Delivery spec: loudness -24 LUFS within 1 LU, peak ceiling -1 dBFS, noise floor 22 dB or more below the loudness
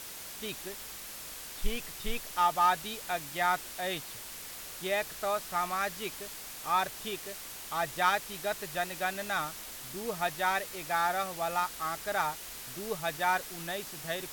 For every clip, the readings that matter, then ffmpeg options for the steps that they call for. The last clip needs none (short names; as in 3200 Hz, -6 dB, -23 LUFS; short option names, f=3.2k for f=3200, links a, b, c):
noise floor -44 dBFS; noise floor target -55 dBFS; loudness -33.0 LUFS; peak -14.0 dBFS; loudness target -24.0 LUFS
-> -af "afftdn=nr=11:nf=-44"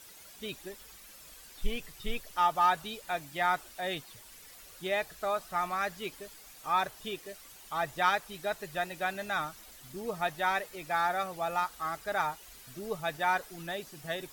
noise floor -52 dBFS; noise floor target -55 dBFS
-> -af "afftdn=nr=6:nf=-52"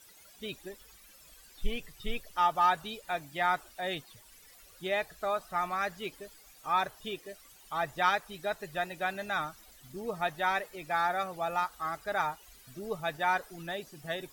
noise floor -57 dBFS; loudness -33.0 LUFS; peak -14.0 dBFS; loudness target -24.0 LUFS
-> -af "volume=9dB"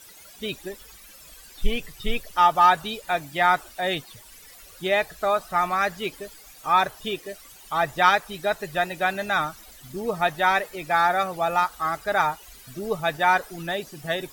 loudness -24.0 LUFS; peak -5.0 dBFS; noise floor -48 dBFS